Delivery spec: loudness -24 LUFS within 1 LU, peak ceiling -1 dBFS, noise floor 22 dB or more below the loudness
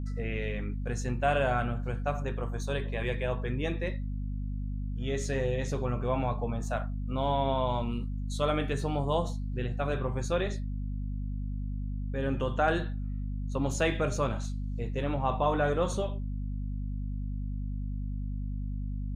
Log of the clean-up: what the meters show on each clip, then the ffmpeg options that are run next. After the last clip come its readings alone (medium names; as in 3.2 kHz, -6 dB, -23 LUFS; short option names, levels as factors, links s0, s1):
hum 50 Hz; highest harmonic 250 Hz; hum level -31 dBFS; loudness -32.0 LUFS; peak level -14.5 dBFS; loudness target -24.0 LUFS
-> -af "bandreject=f=50:t=h:w=4,bandreject=f=100:t=h:w=4,bandreject=f=150:t=h:w=4,bandreject=f=200:t=h:w=4,bandreject=f=250:t=h:w=4"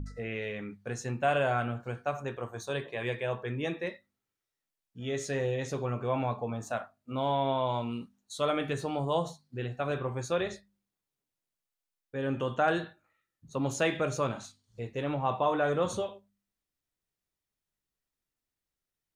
hum not found; loudness -32.5 LUFS; peak level -15.0 dBFS; loudness target -24.0 LUFS
-> -af "volume=2.66"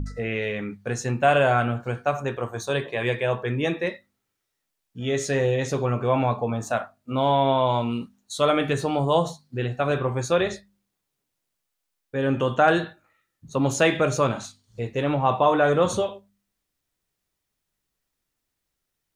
loudness -24.0 LUFS; peak level -6.5 dBFS; noise floor -81 dBFS